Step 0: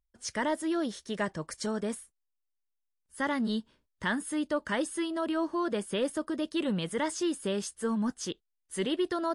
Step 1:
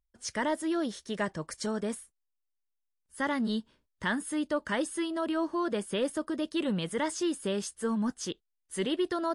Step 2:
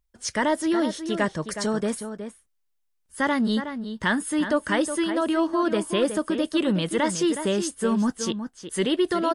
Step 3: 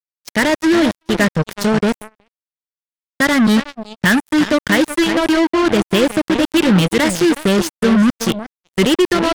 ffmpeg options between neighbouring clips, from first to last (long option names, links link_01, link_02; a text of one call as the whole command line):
ffmpeg -i in.wav -af anull out.wav
ffmpeg -i in.wav -filter_complex "[0:a]asplit=2[link_01][link_02];[link_02]adelay=367.3,volume=-9dB,highshelf=frequency=4000:gain=-8.27[link_03];[link_01][link_03]amix=inputs=2:normalize=0,volume=7dB" out.wav
ffmpeg -i in.wav -af "equalizer=frequency=125:width_type=o:width=1:gain=11,equalizer=frequency=1000:width_type=o:width=1:gain=-7,equalizer=frequency=2000:width_type=o:width=1:gain=5,equalizer=frequency=8000:width_type=o:width=1:gain=-5,acrusher=bits=3:mix=0:aa=0.5,agate=range=-22dB:threshold=-36dB:ratio=16:detection=peak,volume=8dB" out.wav